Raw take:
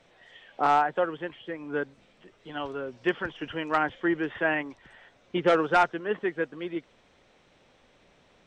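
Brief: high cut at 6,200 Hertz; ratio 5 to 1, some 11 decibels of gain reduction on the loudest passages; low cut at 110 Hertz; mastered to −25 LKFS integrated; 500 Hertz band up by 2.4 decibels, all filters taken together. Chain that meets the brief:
high-pass filter 110 Hz
low-pass filter 6,200 Hz
parametric band 500 Hz +3 dB
downward compressor 5 to 1, threshold −28 dBFS
level +9 dB

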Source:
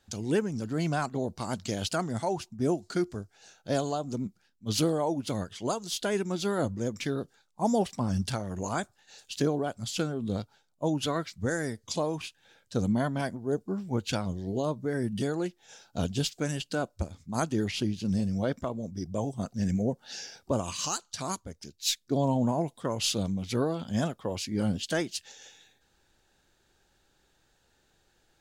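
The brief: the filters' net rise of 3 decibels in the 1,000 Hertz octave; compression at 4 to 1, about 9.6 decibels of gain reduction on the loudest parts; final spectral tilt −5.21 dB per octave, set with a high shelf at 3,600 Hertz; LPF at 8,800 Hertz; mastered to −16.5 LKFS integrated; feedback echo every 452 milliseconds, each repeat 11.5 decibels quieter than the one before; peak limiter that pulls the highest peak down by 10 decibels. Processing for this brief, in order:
low-pass filter 8,800 Hz
parametric band 1,000 Hz +4.5 dB
high-shelf EQ 3,600 Hz −4.5 dB
downward compressor 4 to 1, threshold −33 dBFS
brickwall limiter −29.5 dBFS
repeating echo 452 ms, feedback 27%, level −11.5 dB
level +23.5 dB

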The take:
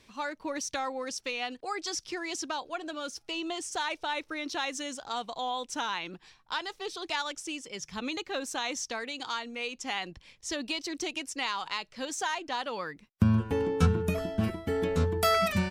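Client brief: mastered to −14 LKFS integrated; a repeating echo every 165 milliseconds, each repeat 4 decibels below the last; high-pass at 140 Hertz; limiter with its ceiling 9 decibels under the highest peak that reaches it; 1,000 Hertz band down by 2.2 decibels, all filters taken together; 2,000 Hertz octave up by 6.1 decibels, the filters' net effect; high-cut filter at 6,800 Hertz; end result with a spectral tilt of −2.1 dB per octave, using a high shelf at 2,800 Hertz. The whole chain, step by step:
high-pass filter 140 Hz
low-pass filter 6,800 Hz
parametric band 1,000 Hz −6.5 dB
parametric band 2,000 Hz +5.5 dB
high-shelf EQ 2,800 Hz +9 dB
brickwall limiter −20.5 dBFS
repeating echo 165 ms, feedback 63%, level −4 dB
level +15.5 dB

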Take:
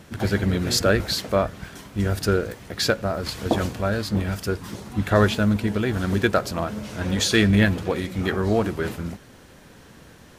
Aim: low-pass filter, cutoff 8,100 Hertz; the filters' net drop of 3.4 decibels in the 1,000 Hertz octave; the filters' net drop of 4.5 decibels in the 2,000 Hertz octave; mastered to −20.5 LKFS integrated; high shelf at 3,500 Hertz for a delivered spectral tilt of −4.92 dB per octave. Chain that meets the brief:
low-pass filter 8,100 Hz
parametric band 1,000 Hz −3.5 dB
parametric band 2,000 Hz −6 dB
high-shelf EQ 3,500 Hz +5.5 dB
level +3 dB

